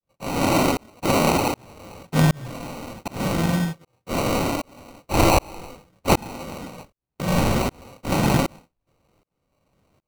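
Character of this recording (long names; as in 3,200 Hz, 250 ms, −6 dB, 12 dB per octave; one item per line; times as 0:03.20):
tremolo saw up 1.3 Hz, depth 100%
aliases and images of a low sample rate 1,700 Hz, jitter 0%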